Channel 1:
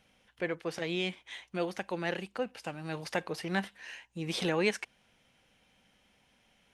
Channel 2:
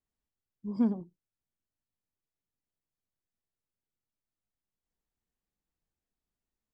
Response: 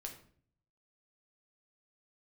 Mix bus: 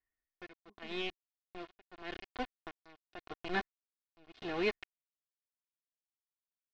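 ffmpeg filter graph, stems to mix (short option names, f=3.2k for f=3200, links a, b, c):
-filter_complex "[0:a]lowshelf=f=170:g=10.5,aeval=exprs='val(0)*gte(abs(val(0)),0.0398)':c=same,volume=-4.5dB,asplit=2[a][b];[1:a]lowpass=f=1.9k:t=q:w=12,acompressor=threshold=-32dB:ratio=6,volume=-8.5dB[c];[b]apad=whole_len=296952[d];[c][d]sidechaingate=range=-33dB:threshold=-39dB:ratio=16:detection=peak[e];[a][e]amix=inputs=2:normalize=0,aecho=1:1:2.8:0.6,tremolo=f=0.83:d=0.94,lowpass=f=4.3k:w=0.5412,lowpass=f=4.3k:w=1.3066"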